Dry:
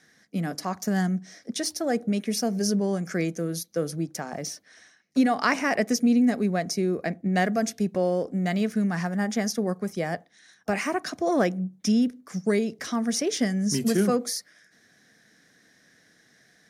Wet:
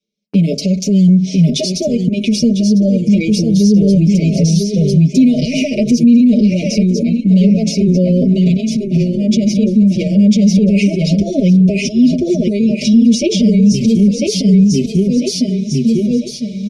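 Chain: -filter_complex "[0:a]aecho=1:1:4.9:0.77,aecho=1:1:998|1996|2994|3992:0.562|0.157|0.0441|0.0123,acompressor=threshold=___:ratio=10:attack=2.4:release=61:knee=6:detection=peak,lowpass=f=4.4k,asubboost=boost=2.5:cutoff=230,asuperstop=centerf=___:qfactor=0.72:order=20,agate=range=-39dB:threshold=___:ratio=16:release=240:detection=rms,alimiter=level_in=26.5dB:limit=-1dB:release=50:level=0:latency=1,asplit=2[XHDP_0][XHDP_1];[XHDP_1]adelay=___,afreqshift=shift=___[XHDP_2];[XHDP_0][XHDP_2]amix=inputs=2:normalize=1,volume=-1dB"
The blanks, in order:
-32dB, 1200, -53dB, 6.7, -0.29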